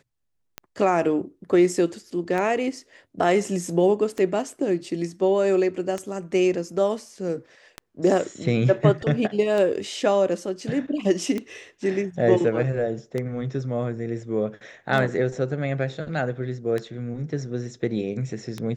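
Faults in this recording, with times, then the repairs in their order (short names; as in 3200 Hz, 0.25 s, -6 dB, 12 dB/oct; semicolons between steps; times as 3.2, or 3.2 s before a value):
tick 33 1/3 rpm -15 dBFS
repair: de-click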